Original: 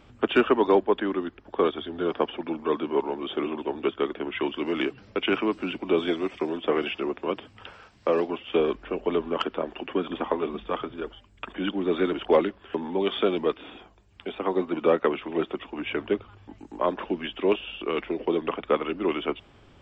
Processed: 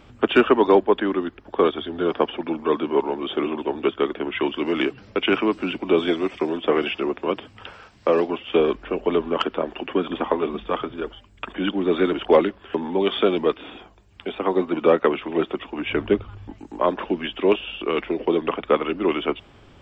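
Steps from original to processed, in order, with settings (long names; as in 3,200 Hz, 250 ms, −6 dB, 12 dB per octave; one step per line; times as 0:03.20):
0:15.89–0:16.51: low-shelf EQ 140 Hz +11.5 dB
level +4.5 dB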